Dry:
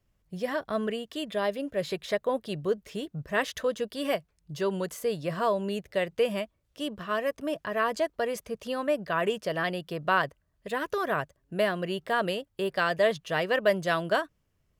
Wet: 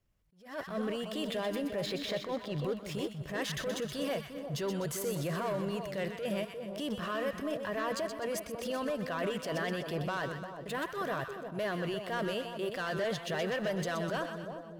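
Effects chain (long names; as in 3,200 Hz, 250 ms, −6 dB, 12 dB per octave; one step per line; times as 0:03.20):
0:01.86–0:02.62: low-pass filter 4,700 Hz 12 dB per octave
leveller curve on the samples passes 2
brickwall limiter −28.5 dBFS, peak gain reduction 16.5 dB
on a send: echo with a time of its own for lows and highs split 1,000 Hz, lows 351 ms, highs 125 ms, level −7 dB
on the sum: level that may rise only so fast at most 130 dB per second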